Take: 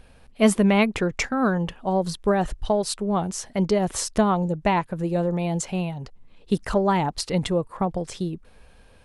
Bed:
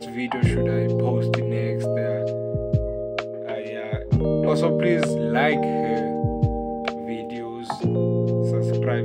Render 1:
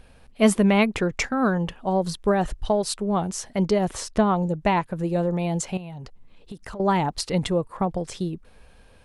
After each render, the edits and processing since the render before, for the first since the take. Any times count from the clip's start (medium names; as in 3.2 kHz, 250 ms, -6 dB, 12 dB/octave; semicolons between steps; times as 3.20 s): 3.93–4.37 s: treble shelf 6.1 kHz -10.5 dB; 5.77–6.80 s: compression 12:1, threshold -33 dBFS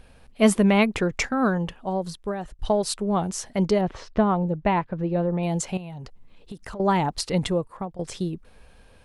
1.41–2.59 s: fade out, to -14.5 dB; 3.81–5.43 s: distance through air 240 m; 7.49–7.99 s: fade out, to -16.5 dB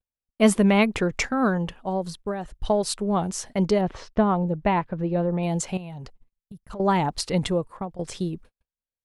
6.30–6.71 s: time-frequency box 200–9900 Hz -14 dB; gate -42 dBFS, range -49 dB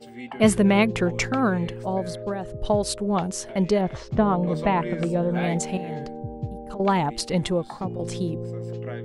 add bed -10.5 dB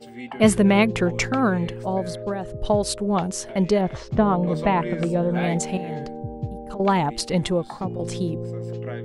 trim +1.5 dB